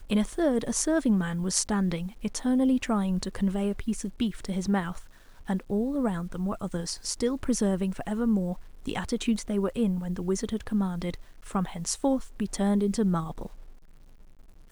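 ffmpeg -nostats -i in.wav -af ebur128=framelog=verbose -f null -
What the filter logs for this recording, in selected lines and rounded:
Integrated loudness:
  I:         -28.5 LUFS
  Threshold: -39.0 LUFS
Loudness range:
  LRA:         3.6 LU
  Threshold: -49.1 LUFS
  LRA low:   -30.4 LUFS
  LRA high:  -26.9 LUFS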